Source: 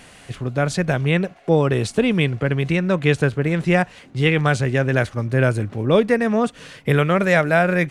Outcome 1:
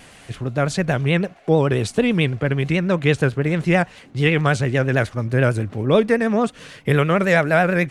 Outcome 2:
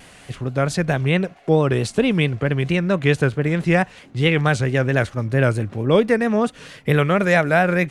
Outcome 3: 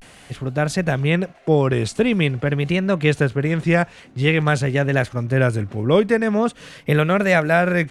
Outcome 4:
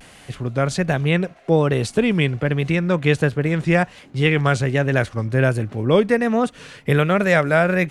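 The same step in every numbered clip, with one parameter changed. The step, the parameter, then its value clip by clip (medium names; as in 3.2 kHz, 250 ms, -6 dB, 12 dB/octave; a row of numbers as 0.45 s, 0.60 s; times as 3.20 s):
vibrato, rate: 9.1 Hz, 4.5 Hz, 0.46 Hz, 1.3 Hz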